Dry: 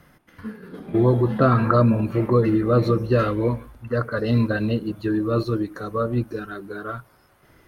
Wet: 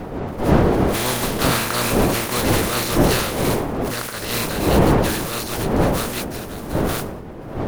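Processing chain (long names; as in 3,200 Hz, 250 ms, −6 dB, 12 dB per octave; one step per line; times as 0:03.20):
compressing power law on the bin magnitudes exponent 0.26
wind on the microphone 480 Hz −17 dBFS
level that may fall only so fast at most 42 dB per second
level −5 dB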